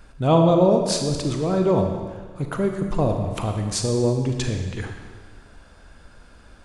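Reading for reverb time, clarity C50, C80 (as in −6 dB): 1.5 s, 5.0 dB, 6.5 dB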